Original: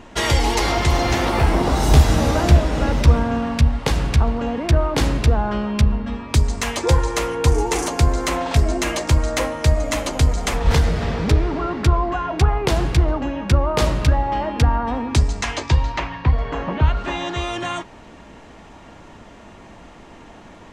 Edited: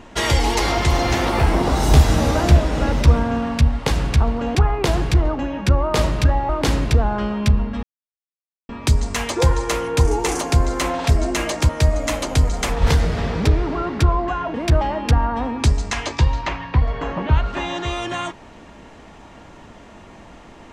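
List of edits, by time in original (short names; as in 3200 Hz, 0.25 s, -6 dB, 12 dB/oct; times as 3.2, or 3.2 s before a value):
4.55–4.82 swap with 12.38–14.32
6.16 insert silence 0.86 s
9.16–9.53 cut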